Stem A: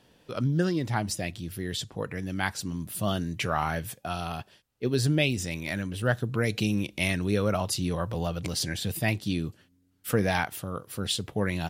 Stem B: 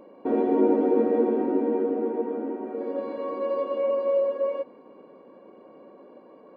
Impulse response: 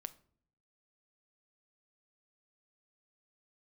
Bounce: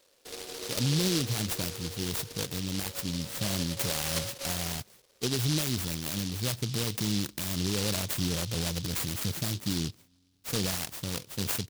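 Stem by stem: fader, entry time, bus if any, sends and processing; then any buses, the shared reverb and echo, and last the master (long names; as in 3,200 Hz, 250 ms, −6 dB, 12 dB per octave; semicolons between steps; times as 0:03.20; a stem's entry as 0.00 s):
0.0 dB, 0.40 s, no send, brickwall limiter −20 dBFS, peak gain reduction 9 dB
−13.0 dB, 0.00 s, no send, high-pass filter 470 Hz 24 dB per octave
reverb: not used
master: short delay modulated by noise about 4,200 Hz, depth 0.33 ms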